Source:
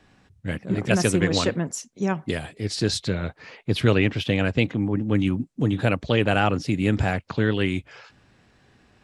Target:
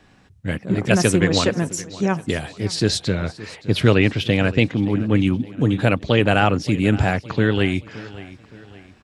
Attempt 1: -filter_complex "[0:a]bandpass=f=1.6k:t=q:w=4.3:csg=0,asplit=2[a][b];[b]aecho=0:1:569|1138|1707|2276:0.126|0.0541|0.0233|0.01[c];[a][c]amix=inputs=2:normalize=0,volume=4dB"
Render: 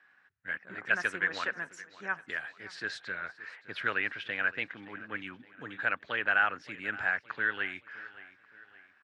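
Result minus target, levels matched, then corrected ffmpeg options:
2000 Hz band +9.5 dB
-filter_complex "[0:a]asplit=2[a][b];[b]aecho=0:1:569|1138|1707|2276:0.126|0.0541|0.0233|0.01[c];[a][c]amix=inputs=2:normalize=0,volume=4dB"

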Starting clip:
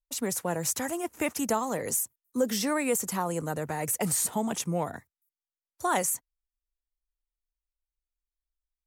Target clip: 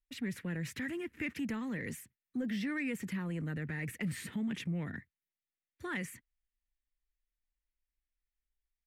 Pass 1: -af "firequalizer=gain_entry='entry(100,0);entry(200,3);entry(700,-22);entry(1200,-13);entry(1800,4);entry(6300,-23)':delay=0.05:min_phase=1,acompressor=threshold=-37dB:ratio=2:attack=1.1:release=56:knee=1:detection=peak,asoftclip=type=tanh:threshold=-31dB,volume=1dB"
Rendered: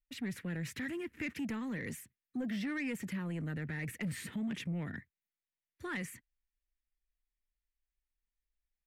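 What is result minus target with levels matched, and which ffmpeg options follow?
soft clip: distortion +11 dB
-af "firequalizer=gain_entry='entry(100,0);entry(200,3);entry(700,-22);entry(1200,-13);entry(1800,4);entry(6300,-23)':delay=0.05:min_phase=1,acompressor=threshold=-37dB:ratio=2:attack=1.1:release=56:knee=1:detection=peak,asoftclip=type=tanh:threshold=-24.5dB,volume=1dB"

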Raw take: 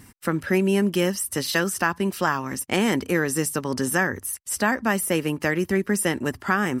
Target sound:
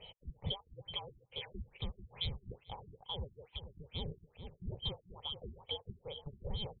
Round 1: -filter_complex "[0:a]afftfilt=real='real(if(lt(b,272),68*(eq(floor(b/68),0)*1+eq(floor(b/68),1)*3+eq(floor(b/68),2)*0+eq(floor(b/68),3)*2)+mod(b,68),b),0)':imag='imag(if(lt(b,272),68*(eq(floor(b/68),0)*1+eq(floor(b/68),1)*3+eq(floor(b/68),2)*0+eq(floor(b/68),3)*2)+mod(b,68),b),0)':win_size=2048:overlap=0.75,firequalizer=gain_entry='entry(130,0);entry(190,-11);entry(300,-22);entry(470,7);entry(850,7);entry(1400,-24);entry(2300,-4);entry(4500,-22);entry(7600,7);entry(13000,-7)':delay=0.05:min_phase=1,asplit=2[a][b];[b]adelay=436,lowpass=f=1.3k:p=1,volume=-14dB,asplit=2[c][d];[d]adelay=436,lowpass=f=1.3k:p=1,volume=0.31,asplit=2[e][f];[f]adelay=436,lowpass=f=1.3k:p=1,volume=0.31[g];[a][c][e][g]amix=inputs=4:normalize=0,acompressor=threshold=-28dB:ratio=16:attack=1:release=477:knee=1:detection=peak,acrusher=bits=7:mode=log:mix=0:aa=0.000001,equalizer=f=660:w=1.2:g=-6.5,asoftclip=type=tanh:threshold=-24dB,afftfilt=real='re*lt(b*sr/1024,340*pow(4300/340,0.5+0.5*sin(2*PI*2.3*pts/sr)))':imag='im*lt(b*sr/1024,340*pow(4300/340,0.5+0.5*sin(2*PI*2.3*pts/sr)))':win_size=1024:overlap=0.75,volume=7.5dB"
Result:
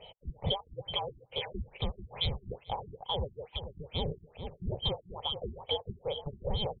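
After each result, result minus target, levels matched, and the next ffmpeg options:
compressor: peak gain reduction -6.5 dB; 500 Hz band +4.5 dB
-filter_complex "[0:a]afftfilt=real='real(if(lt(b,272),68*(eq(floor(b/68),0)*1+eq(floor(b/68),1)*3+eq(floor(b/68),2)*0+eq(floor(b/68),3)*2)+mod(b,68),b),0)':imag='imag(if(lt(b,272),68*(eq(floor(b/68),0)*1+eq(floor(b/68),1)*3+eq(floor(b/68),2)*0+eq(floor(b/68),3)*2)+mod(b,68),b),0)':win_size=2048:overlap=0.75,firequalizer=gain_entry='entry(130,0);entry(190,-11);entry(300,-22);entry(470,7);entry(850,7);entry(1400,-24);entry(2300,-4);entry(4500,-22);entry(7600,7);entry(13000,-7)':delay=0.05:min_phase=1,asplit=2[a][b];[b]adelay=436,lowpass=f=1.3k:p=1,volume=-14dB,asplit=2[c][d];[d]adelay=436,lowpass=f=1.3k:p=1,volume=0.31,asplit=2[e][f];[f]adelay=436,lowpass=f=1.3k:p=1,volume=0.31[g];[a][c][e][g]amix=inputs=4:normalize=0,acompressor=threshold=-35dB:ratio=16:attack=1:release=477:knee=1:detection=peak,acrusher=bits=7:mode=log:mix=0:aa=0.000001,equalizer=f=660:w=1.2:g=-6.5,asoftclip=type=tanh:threshold=-24dB,afftfilt=real='re*lt(b*sr/1024,340*pow(4300/340,0.5+0.5*sin(2*PI*2.3*pts/sr)))':imag='im*lt(b*sr/1024,340*pow(4300/340,0.5+0.5*sin(2*PI*2.3*pts/sr)))':win_size=1024:overlap=0.75,volume=7.5dB"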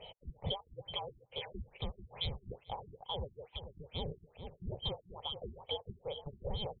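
500 Hz band +4.5 dB
-filter_complex "[0:a]afftfilt=real='real(if(lt(b,272),68*(eq(floor(b/68),0)*1+eq(floor(b/68),1)*3+eq(floor(b/68),2)*0+eq(floor(b/68),3)*2)+mod(b,68),b),0)':imag='imag(if(lt(b,272),68*(eq(floor(b/68),0)*1+eq(floor(b/68),1)*3+eq(floor(b/68),2)*0+eq(floor(b/68),3)*2)+mod(b,68),b),0)':win_size=2048:overlap=0.75,firequalizer=gain_entry='entry(130,0);entry(190,-11);entry(300,-22);entry(470,7);entry(850,7);entry(1400,-24);entry(2300,-4);entry(4500,-22);entry(7600,7);entry(13000,-7)':delay=0.05:min_phase=1,asplit=2[a][b];[b]adelay=436,lowpass=f=1.3k:p=1,volume=-14dB,asplit=2[c][d];[d]adelay=436,lowpass=f=1.3k:p=1,volume=0.31,asplit=2[e][f];[f]adelay=436,lowpass=f=1.3k:p=1,volume=0.31[g];[a][c][e][g]amix=inputs=4:normalize=0,acompressor=threshold=-35dB:ratio=16:attack=1:release=477:knee=1:detection=peak,acrusher=bits=7:mode=log:mix=0:aa=0.000001,equalizer=f=660:w=1.2:g=-15.5,asoftclip=type=tanh:threshold=-24dB,afftfilt=real='re*lt(b*sr/1024,340*pow(4300/340,0.5+0.5*sin(2*PI*2.3*pts/sr)))':imag='im*lt(b*sr/1024,340*pow(4300/340,0.5+0.5*sin(2*PI*2.3*pts/sr)))':win_size=1024:overlap=0.75,volume=7.5dB"

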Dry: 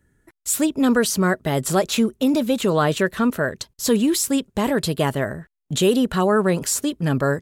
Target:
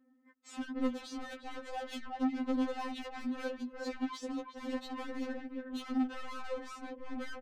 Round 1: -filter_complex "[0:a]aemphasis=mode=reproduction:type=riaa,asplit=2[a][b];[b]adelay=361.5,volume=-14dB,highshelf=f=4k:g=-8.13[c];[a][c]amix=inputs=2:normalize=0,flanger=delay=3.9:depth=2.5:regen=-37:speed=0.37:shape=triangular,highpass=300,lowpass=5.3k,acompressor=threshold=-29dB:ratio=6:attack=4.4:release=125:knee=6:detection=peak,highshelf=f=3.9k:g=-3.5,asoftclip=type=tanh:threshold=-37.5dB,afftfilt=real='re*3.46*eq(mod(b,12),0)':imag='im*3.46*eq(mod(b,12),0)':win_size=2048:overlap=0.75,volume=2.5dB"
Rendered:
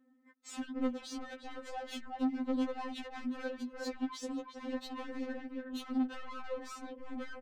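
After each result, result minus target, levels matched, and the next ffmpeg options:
compressor: peak gain reduction +6 dB; 8000 Hz band +3.5 dB
-filter_complex "[0:a]aemphasis=mode=reproduction:type=riaa,asplit=2[a][b];[b]adelay=361.5,volume=-14dB,highshelf=f=4k:g=-8.13[c];[a][c]amix=inputs=2:normalize=0,flanger=delay=3.9:depth=2.5:regen=-37:speed=0.37:shape=triangular,highpass=300,lowpass=5.3k,acompressor=threshold=-22dB:ratio=6:attack=4.4:release=125:knee=6:detection=peak,highshelf=f=3.9k:g=-3.5,asoftclip=type=tanh:threshold=-37.5dB,afftfilt=real='re*3.46*eq(mod(b,12),0)':imag='im*3.46*eq(mod(b,12),0)':win_size=2048:overlap=0.75,volume=2.5dB"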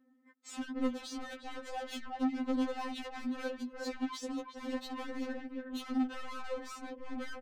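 8000 Hz band +4.0 dB
-filter_complex "[0:a]aemphasis=mode=reproduction:type=riaa,asplit=2[a][b];[b]adelay=361.5,volume=-14dB,highshelf=f=4k:g=-8.13[c];[a][c]amix=inputs=2:normalize=0,flanger=delay=3.9:depth=2.5:regen=-37:speed=0.37:shape=triangular,highpass=300,lowpass=5.3k,acompressor=threshold=-22dB:ratio=6:attack=4.4:release=125:knee=6:detection=peak,highshelf=f=3.9k:g=-10.5,asoftclip=type=tanh:threshold=-37.5dB,afftfilt=real='re*3.46*eq(mod(b,12),0)':imag='im*3.46*eq(mod(b,12),0)':win_size=2048:overlap=0.75,volume=2.5dB"

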